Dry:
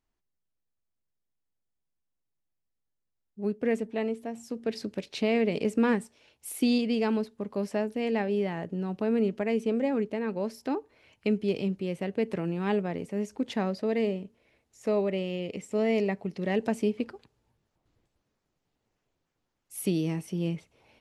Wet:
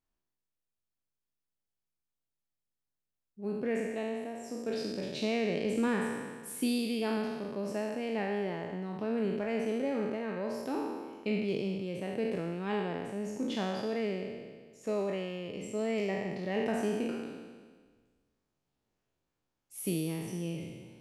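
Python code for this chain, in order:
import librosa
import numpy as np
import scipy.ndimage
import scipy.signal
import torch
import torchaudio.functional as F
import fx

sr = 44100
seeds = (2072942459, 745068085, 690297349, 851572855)

y = fx.spec_trails(x, sr, decay_s=1.54)
y = fx.notch(y, sr, hz=2000.0, q=24.0)
y = y * 10.0 ** (-7.0 / 20.0)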